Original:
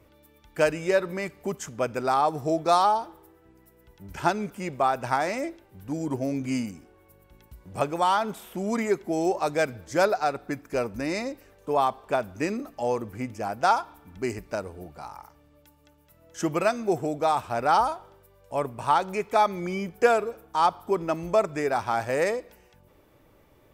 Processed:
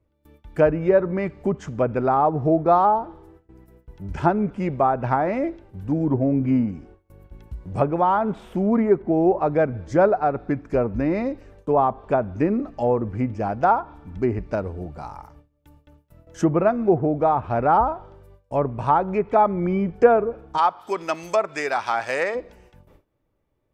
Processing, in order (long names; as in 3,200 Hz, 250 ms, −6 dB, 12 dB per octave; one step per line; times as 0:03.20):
noise gate with hold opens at −46 dBFS
spectral tilt −2.5 dB per octave, from 0:20.57 +4 dB per octave, from 0:22.34 −1.5 dB per octave
treble cut that deepens with the level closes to 1,500 Hz, closed at −20 dBFS
level +3.5 dB